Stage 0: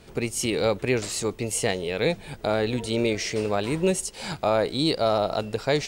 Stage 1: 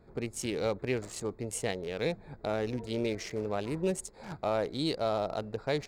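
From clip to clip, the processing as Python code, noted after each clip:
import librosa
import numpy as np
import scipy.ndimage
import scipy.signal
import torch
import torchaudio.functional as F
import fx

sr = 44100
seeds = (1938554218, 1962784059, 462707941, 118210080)

y = fx.wiener(x, sr, points=15)
y = F.gain(torch.from_numpy(y), -7.5).numpy()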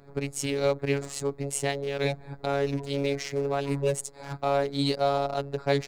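y = fx.robotise(x, sr, hz=140.0)
y = F.gain(torch.from_numpy(y), 7.5).numpy()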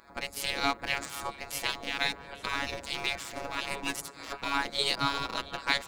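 y = fx.spec_gate(x, sr, threshold_db=-15, keep='weak')
y = fx.echo_stepped(y, sr, ms=169, hz=150.0, octaves=1.4, feedback_pct=70, wet_db=-8)
y = F.gain(torch.from_numpy(y), 7.0).numpy()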